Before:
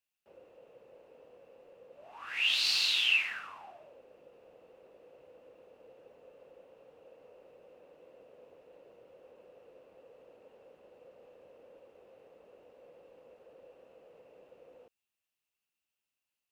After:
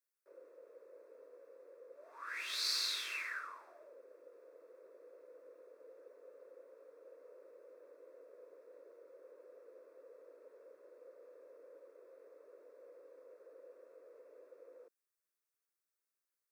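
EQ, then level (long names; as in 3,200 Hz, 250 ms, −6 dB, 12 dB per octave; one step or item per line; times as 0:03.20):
high-pass filter 250 Hz 24 dB per octave
phaser with its sweep stopped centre 790 Hz, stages 6
notch filter 7,000 Hz, Q 22
0.0 dB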